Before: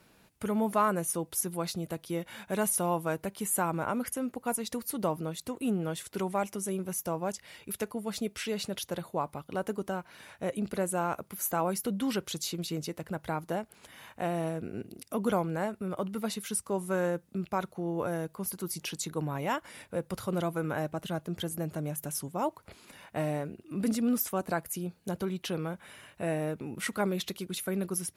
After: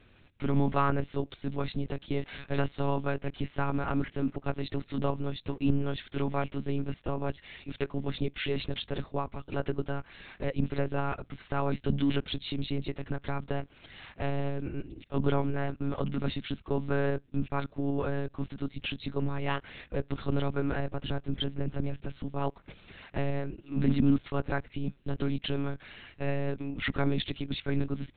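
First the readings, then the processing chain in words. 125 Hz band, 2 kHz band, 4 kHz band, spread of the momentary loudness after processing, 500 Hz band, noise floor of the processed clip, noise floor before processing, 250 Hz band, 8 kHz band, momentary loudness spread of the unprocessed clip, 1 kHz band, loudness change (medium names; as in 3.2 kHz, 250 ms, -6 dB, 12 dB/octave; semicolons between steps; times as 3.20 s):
+6.0 dB, +1.0 dB, +1.5 dB, 8 LU, -1.0 dB, -60 dBFS, -63 dBFS, +1.0 dB, under -40 dB, 8 LU, -2.5 dB, 0.0 dB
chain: peaking EQ 800 Hz -8.5 dB 1.9 oct; monotone LPC vocoder at 8 kHz 140 Hz; trim +6 dB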